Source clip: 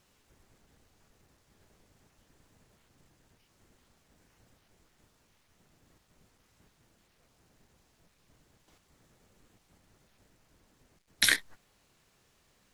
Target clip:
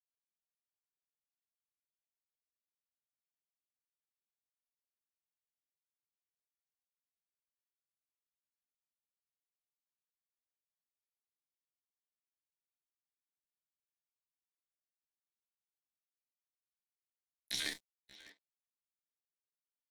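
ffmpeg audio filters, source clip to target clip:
-filter_complex "[0:a]alimiter=limit=-15dB:level=0:latency=1:release=41,aeval=exprs='sgn(val(0))*max(abs(val(0))-0.002,0)':c=same,lowshelf=f=120:g=-10.5,flanger=delay=8.8:depth=5.7:regen=-41:speed=0.34:shape=sinusoidal,aeval=exprs='sgn(val(0))*max(abs(val(0))-0.00398,0)':c=same,dynaudnorm=f=980:g=3:m=6.5dB,tremolo=f=140:d=0.261,acrossover=split=6200[a][b];[b]acompressor=threshold=-46dB:ratio=4:attack=1:release=60[c];[a][c]amix=inputs=2:normalize=0,asplit=2[d][e];[e]adelay=380,highpass=300,lowpass=3.4k,asoftclip=type=hard:threshold=-27dB,volume=-15dB[f];[d][f]amix=inputs=2:normalize=0,atempo=0.64,equalizer=f=1.5k:w=0.95:g=-12,volume=-1.5dB"

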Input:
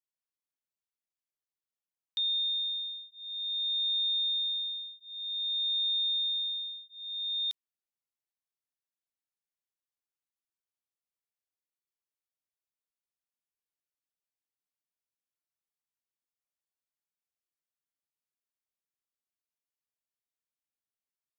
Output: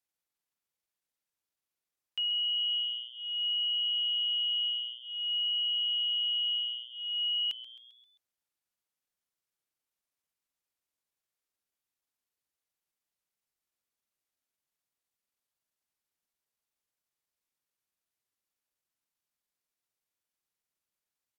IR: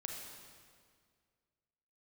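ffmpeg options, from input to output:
-filter_complex "[0:a]alimiter=level_in=7.5dB:limit=-24dB:level=0:latency=1,volume=-7.5dB,asetrate=35002,aresample=44100,atempo=1.25992,asplit=2[a][b];[b]asplit=5[c][d][e][f][g];[c]adelay=132,afreqshift=120,volume=-15.5dB[h];[d]adelay=264,afreqshift=240,volume=-21dB[i];[e]adelay=396,afreqshift=360,volume=-26.5dB[j];[f]adelay=528,afreqshift=480,volume=-32dB[k];[g]adelay=660,afreqshift=600,volume=-37.6dB[l];[h][i][j][k][l]amix=inputs=5:normalize=0[m];[a][m]amix=inputs=2:normalize=0,volume=4dB"

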